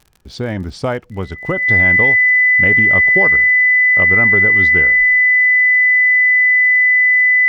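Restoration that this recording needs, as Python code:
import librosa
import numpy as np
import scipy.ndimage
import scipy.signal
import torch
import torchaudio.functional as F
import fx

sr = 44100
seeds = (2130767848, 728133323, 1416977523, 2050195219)

y = fx.fix_declick_ar(x, sr, threshold=6.5)
y = fx.notch(y, sr, hz=2000.0, q=30.0)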